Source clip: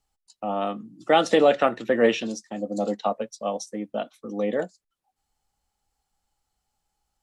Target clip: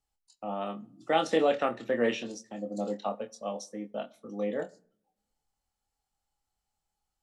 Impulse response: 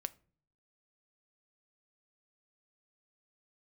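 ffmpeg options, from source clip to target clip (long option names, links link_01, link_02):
-filter_complex "[0:a]asplit=2[link_01][link_02];[1:a]atrim=start_sample=2205,asetrate=29547,aresample=44100,adelay=25[link_03];[link_02][link_03]afir=irnorm=-1:irlink=0,volume=-6.5dB[link_04];[link_01][link_04]amix=inputs=2:normalize=0,volume=-8dB"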